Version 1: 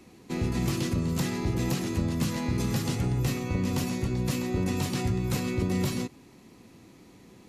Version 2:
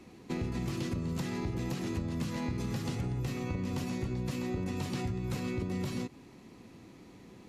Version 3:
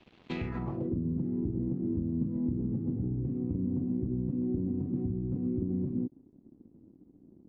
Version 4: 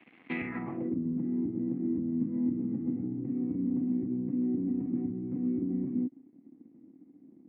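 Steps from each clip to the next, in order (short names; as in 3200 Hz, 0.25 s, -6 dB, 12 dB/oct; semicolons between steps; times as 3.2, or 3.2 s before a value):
high shelf 6700 Hz -8.5 dB; compressor, threshold -31 dBFS, peak gain reduction 8.5 dB
crossover distortion -53.5 dBFS; low-pass sweep 3300 Hz -> 290 Hz, 0.35–0.98
speaker cabinet 270–2500 Hz, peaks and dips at 270 Hz +5 dB, 400 Hz -8 dB, 580 Hz -8 dB, 940 Hz -5 dB, 1400 Hz -3 dB, 2100 Hz +9 dB; gain +4 dB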